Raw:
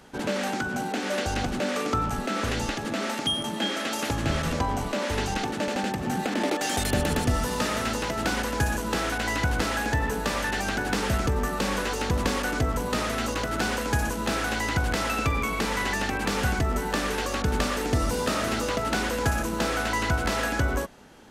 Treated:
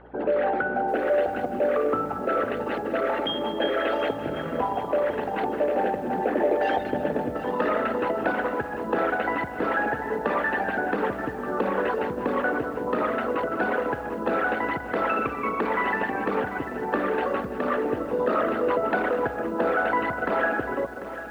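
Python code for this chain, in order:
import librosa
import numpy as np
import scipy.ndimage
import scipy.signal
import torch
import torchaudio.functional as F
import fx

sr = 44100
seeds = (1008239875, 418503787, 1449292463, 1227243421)

p1 = fx.envelope_sharpen(x, sr, power=2.0)
p2 = 10.0 ** (-27.5 / 20.0) * np.tanh(p1 / 10.0 ** (-27.5 / 20.0))
p3 = p1 + (p2 * 10.0 ** (-11.0 / 20.0))
p4 = fx.bandpass_edges(p3, sr, low_hz=410.0, high_hz=4900.0)
p5 = fx.air_absorb(p4, sr, metres=500.0)
p6 = p5 + fx.echo_single(p5, sr, ms=338, db=-19.0, dry=0)
p7 = fx.add_hum(p6, sr, base_hz=60, snr_db=28)
p8 = p7 + 10.0 ** (-13.0 / 20.0) * np.pad(p7, (int(198 * sr / 1000.0), 0))[:len(p7)]
p9 = fx.echo_crushed(p8, sr, ms=744, feedback_pct=35, bits=9, wet_db=-12)
y = p9 * 10.0 ** (6.5 / 20.0)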